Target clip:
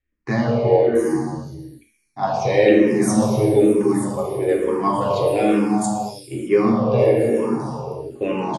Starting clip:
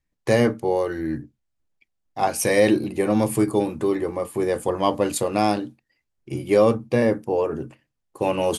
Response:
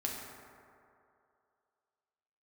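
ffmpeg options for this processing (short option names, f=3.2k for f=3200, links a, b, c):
-filter_complex "[0:a]acrossover=split=5000[a][b];[b]adelay=680[c];[a][c]amix=inputs=2:normalize=0[d];[1:a]atrim=start_sample=2205,afade=t=out:st=0.38:d=0.01,atrim=end_sample=17199,asetrate=23373,aresample=44100[e];[d][e]afir=irnorm=-1:irlink=0,asplit=2[f][g];[g]afreqshift=-1.1[h];[f][h]amix=inputs=2:normalize=1,volume=-1.5dB"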